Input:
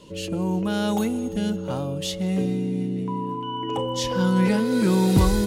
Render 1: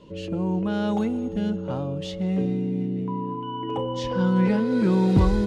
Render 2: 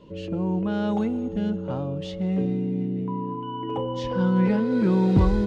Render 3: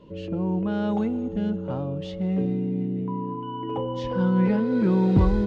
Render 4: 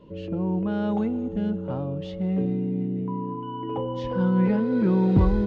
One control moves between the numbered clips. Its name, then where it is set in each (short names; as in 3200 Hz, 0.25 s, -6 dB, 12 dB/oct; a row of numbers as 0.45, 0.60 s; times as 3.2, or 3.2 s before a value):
tape spacing loss, at 10 kHz: 21, 30, 38, 46 dB